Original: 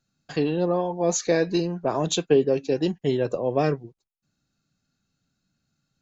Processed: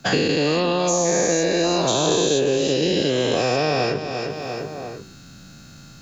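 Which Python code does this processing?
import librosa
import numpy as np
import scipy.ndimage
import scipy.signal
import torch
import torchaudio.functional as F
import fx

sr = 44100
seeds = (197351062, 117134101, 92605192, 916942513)

p1 = fx.spec_dilate(x, sr, span_ms=480)
p2 = fx.dmg_crackle(p1, sr, seeds[0], per_s=40.0, level_db=-42.0, at=(1.69, 2.57), fade=0.02)
p3 = p2 + fx.echo_feedback(p2, sr, ms=347, feedback_pct=25, wet_db=-15, dry=0)
p4 = fx.band_squash(p3, sr, depth_pct=100)
y = p4 * 10.0 ** (-4.5 / 20.0)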